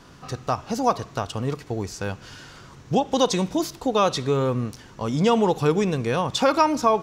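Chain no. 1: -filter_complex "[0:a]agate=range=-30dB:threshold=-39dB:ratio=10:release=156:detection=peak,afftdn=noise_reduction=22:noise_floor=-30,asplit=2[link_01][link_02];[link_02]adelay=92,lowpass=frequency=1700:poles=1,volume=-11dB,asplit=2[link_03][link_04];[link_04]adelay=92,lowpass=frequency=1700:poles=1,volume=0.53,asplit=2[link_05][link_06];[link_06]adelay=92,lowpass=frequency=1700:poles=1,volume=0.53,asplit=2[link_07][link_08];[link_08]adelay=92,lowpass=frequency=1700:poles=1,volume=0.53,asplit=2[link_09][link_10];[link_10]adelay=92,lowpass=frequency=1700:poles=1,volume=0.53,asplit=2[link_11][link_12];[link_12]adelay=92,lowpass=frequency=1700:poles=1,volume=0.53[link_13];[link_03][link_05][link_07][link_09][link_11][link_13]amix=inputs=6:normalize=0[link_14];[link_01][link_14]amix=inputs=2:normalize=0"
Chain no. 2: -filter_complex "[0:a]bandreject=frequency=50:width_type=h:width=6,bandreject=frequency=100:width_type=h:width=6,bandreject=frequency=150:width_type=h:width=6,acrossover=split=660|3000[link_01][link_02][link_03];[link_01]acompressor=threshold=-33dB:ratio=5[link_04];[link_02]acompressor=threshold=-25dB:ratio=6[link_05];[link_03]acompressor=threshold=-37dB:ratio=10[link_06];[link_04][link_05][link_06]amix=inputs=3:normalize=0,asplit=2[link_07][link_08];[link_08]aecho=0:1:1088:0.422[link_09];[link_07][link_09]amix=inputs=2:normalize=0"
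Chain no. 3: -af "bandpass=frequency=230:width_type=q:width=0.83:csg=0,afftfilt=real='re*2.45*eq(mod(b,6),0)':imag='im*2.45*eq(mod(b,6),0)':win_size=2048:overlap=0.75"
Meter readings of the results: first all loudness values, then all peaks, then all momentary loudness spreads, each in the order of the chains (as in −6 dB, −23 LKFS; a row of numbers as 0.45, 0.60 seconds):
−23.5, −30.0, −30.0 LKFS; −6.0, −12.5, −10.5 dBFS; 13, 9, 14 LU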